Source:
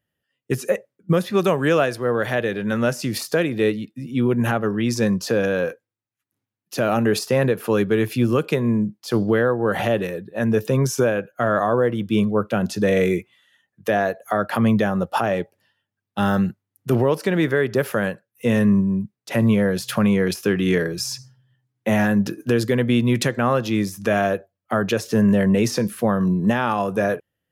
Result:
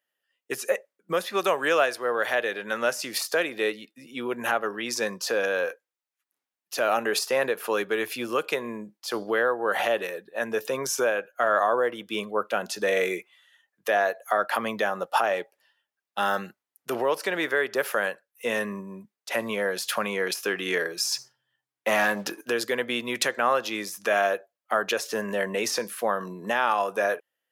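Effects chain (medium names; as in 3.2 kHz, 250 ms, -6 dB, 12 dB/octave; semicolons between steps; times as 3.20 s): 21.12–22.41 s: waveshaping leveller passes 1; high-pass 610 Hz 12 dB/octave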